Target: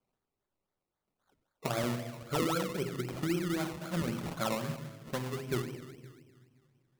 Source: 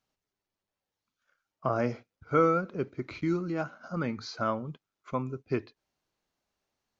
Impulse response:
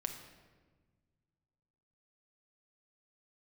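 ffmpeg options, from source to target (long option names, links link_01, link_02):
-filter_complex "[0:a]acompressor=threshold=-30dB:ratio=2.5[link_01];[1:a]atrim=start_sample=2205,asetrate=43218,aresample=44100[link_02];[link_01][link_02]afir=irnorm=-1:irlink=0,acrusher=samples=22:mix=1:aa=0.000001:lfo=1:lforange=13.2:lforate=3.8"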